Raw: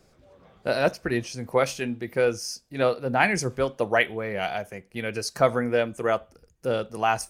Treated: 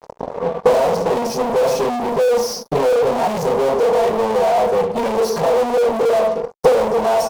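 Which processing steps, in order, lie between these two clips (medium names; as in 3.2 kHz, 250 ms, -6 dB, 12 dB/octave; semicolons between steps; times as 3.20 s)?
peak limiter -16.5 dBFS, peak gain reduction 10.5 dB; waveshaping leveller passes 1; comb 4.3 ms, depth 79%; reverberation RT60 0.35 s, pre-delay 3 ms, DRR -10 dB; fuzz box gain 29 dB, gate -36 dBFS; transient shaper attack +8 dB, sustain -6 dB; high-order bell 650 Hz +12.5 dB; trim -12 dB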